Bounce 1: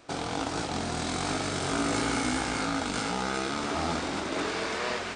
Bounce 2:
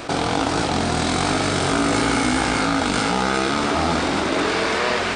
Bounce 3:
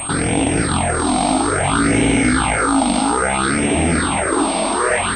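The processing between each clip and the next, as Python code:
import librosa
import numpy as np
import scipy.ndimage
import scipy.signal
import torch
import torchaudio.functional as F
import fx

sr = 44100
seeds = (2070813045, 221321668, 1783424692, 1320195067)

y1 = fx.peak_eq(x, sr, hz=6700.0, db=-3.5, octaves=0.77)
y1 = fx.env_flatten(y1, sr, amount_pct=50)
y1 = y1 * librosa.db_to_amplitude(8.0)
y2 = fx.phaser_stages(y1, sr, stages=6, low_hz=110.0, high_hz=1300.0, hz=0.6, feedback_pct=25)
y2 = fx.pwm(y2, sr, carrier_hz=8500.0)
y2 = y2 * librosa.db_to_amplitude(6.5)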